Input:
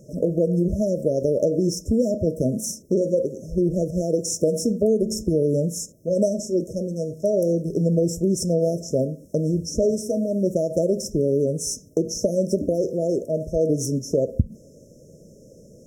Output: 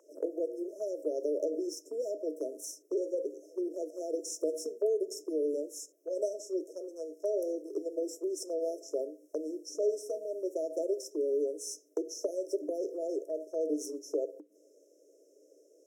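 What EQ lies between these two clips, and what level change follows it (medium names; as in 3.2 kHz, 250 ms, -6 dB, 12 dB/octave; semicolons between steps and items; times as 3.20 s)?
rippled Chebyshev high-pass 290 Hz, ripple 6 dB; high-order bell 1.6 kHz +11.5 dB 2.3 oct; treble shelf 12 kHz +2.5 dB; -7.5 dB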